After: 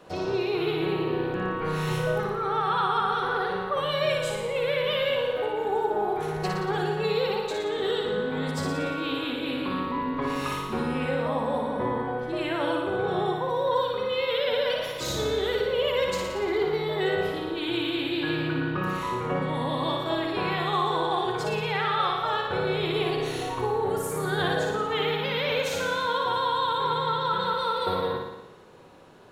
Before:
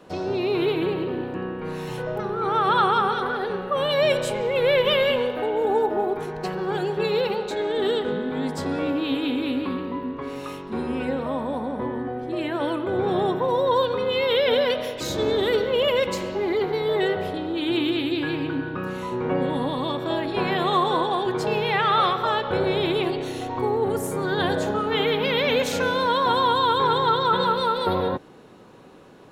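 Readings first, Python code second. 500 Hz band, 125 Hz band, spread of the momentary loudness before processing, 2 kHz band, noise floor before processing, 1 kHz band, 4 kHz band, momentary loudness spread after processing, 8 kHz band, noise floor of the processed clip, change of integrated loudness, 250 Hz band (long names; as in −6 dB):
−4.0 dB, −0.5 dB, 9 LU, −1.5 dB, −35 dBFS, −3.0 dB, −3.0 dB, 4 LU, −0.5 dB, −33 dBFS, −3.5 dB, −4.5 dB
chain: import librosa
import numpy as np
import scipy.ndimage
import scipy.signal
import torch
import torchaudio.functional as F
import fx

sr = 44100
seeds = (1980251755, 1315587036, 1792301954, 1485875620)

y = fx.rider(x, sr, range_db=10, speed_s=0.5)
y = fx.peak_eq(y, sr, hz=250.0, db=-6.0, octaves=0.98)
y = fx.room_flutter(y, sr, wall_m=10.0, rt60_s=0.95)
y = y * librosa.db_to_amplitude(-4.0)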